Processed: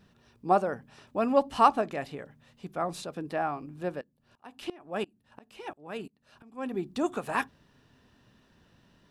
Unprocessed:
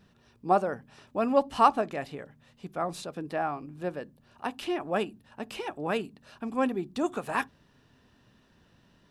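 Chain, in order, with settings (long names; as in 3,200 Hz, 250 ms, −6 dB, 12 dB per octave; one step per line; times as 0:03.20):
0:04.01–0:06.74: tremolo with a ramp in dB swelling 2.9 Hz, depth 23 dB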